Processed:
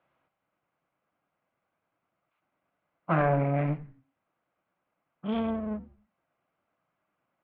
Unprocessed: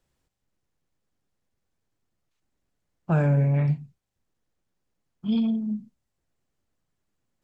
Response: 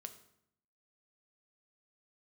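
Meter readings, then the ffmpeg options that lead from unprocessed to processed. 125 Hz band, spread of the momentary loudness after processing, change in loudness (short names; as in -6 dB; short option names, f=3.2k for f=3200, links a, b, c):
-7.5 dB, 14 LU, -4.5 dB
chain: -filter_complex "[0:a]equalizer=f=1.8k:t=o:w=2.8:g=4.5,bandreject=f=1.8k:w=8.1,aeval=exprs='clip(val(0),-1,0.0178)':c=same,highpass=190,equalizer=f=230:t=q:w=4:g=-5,equalizer=f=410:t=q:w=4:g=-7,equalizer=f=650:t=q:w=4:g=6,equalizer=f=1.2k:t=q:w=4:g=5,lowpass=f=2.5k:w=0.5412,lowpass=f=2.5k:w=1.3066,asplit=4[a][b][c][d];[b]adelay=87,afreqshift=-140,volume=-19dB[e];[c]adelay=174,afreqshift=-280,volume=-26.7dB[f];[d]adelay=261,afreqshift=-420,volume=-34.5dB[g];[a][e][f][g]amix=inputs=4:normalize=0,volume=3.5dB"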